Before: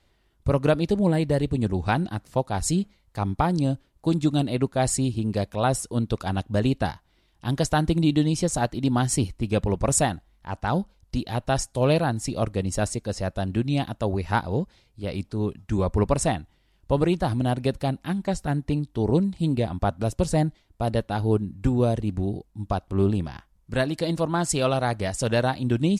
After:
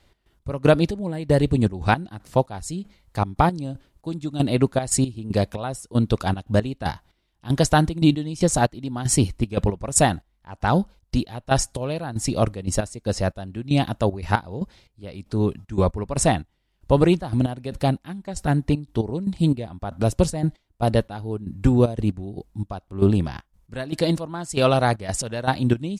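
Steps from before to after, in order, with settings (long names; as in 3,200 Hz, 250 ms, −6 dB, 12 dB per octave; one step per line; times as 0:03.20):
gate pattern "x.x..xx...xx" 116 BPM −12 dB
level +5 dB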